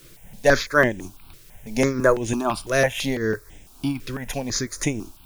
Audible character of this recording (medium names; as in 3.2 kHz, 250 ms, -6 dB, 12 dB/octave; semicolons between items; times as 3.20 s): tremolo triangle 4 Hz, depth 70%; a quantiser's noise floor 10-bit, dither triangular; notches that jump at a steady rate 6 Hz 220–4400 Hz